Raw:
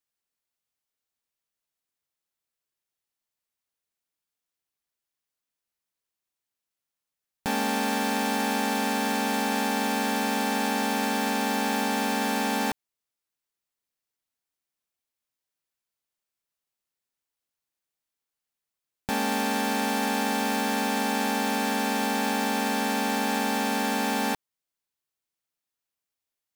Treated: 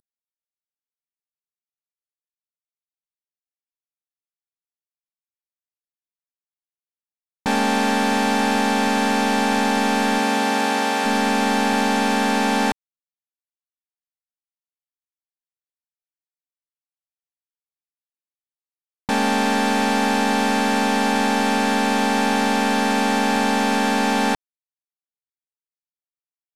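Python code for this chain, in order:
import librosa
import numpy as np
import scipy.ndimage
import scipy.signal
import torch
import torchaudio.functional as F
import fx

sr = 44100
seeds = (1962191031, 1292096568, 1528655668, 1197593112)

y = fx.cvsd(x, sr, bps=64000)
y = fx.highpass(y, sr, hz=fx.line((10.18, 160.0), (11.04, 360.0)), slope=12, at=(10.18, 11.04), fade=0.02)
y = F.gain(torch.from_numpy(y), 7.5).numpy()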